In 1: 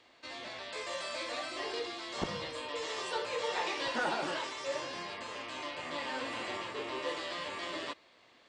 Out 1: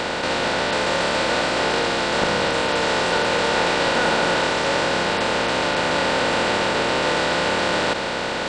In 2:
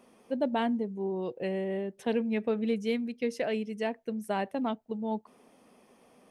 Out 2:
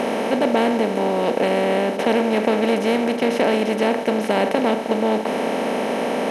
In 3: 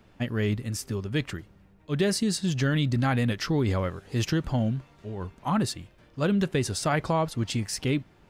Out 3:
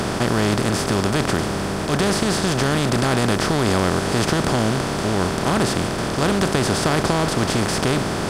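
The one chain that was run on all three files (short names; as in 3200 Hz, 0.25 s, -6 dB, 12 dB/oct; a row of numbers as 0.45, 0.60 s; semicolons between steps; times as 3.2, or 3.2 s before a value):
per-bin compression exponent 0.2; match loudness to -20 LUFS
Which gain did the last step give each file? +7.0, +4.5, -1.0 dB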